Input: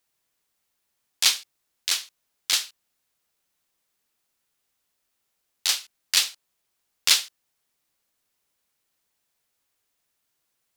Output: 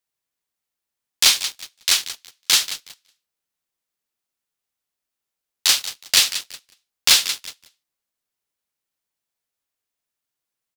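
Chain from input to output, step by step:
repeating echo 184 ms, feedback 37%, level −15 dB
leveller curve on the samples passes 3
level −2.5 dB

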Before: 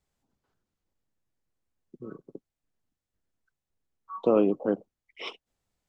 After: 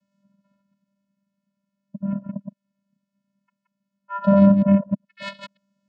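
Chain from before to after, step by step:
delay that plays each chunk backwards 105 ms, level −4 dB
dynamic equaliser 1,800 Hz, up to +6 dB, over −42 dBFS, Q 0.93
in parallel at −0.5 dB: downward compressor, threshold −34 dBFS, peak gain reduction 17 dB
on the sum: channel vocoder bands 8, square 198 Hz
level +7 dB

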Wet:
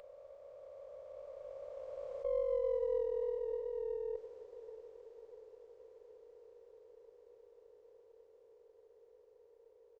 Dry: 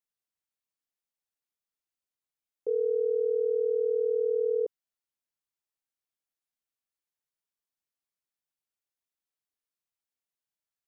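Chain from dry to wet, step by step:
compressor on every frequency bin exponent 0.2
source passing by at 0:02.89, 31 m/s, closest 18 metres
high-pass filter 430 Hz 6 dB per octave
spectral tilt +6 dB per octave
in parallel at −1 dB: compressor whose output falls as the input rises −51 dBFS, ratio −1
on the sum: high-frequency loss of the air 190 metres
on a send at −11 dB: convolution reverb RT60 5.3 s, pre-delay 23 ms
on the sum: downsampling to 16,000 Hz
wrong playback speed 44.1 kHz file played as 48 kHz
windowed peak hold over 5 samples
level +1.5 dB

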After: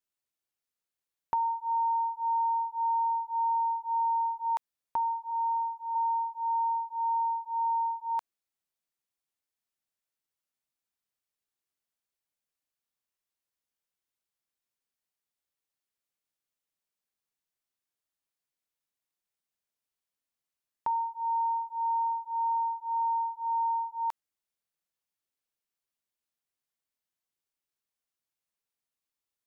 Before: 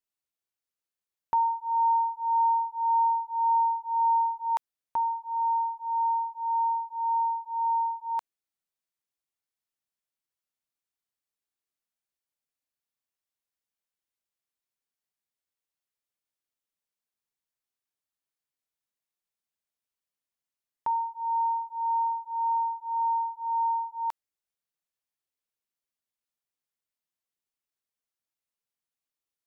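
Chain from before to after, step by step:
0:05.30–0:05.94: high-pass filter 690 Hz → 950 Hz 12 dB per octave
downward compressor, threshold −26 dBFS, peak gain reduction 5 dB

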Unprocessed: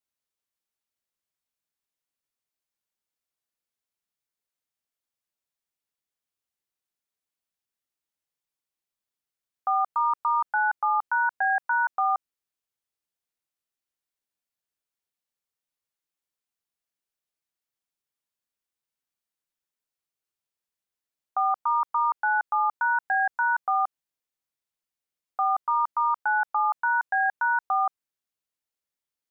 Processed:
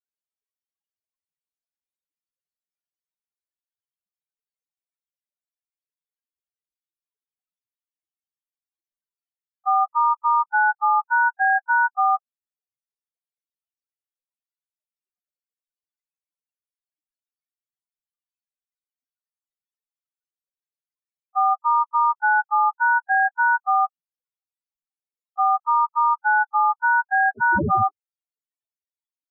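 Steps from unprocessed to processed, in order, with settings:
0:27.36–0:27.87: wind on the microphone 630 Hz −19 dBFS
spectral peaks only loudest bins 4
level +6 dB

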